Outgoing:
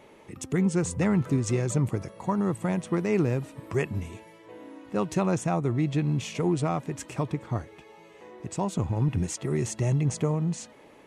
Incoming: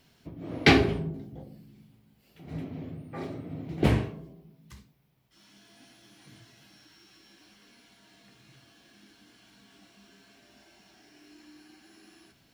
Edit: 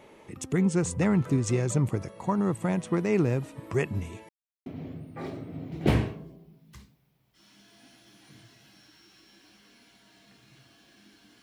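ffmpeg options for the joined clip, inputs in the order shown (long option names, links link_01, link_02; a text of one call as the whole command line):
ffmpeg -i cue0.wav -i cue1.wav -filter_complex "[0:a]apad=whole_dur=11.42,atrim=end=11.42,asplit=2[link_01][link_02];[link_01]atrim=end=4.29,asetpts=PTS-STARTPTS,afade=type=out:start_time=4.286:duration=0.004:curve=hsin[link_03];[link_02]atrim=start=4.29:end=4.66,asetpts=PTS-STARTPTS,volume=0[link_04];[1:a]atrim=start=2.63:end=9.39,asetpts=PTS-STARTPTS,afade=type=in:duration=0.004:curve=hsin[link_05];[link_03][link_04][link_05]concat=n=3:v=0:a=1" out.wav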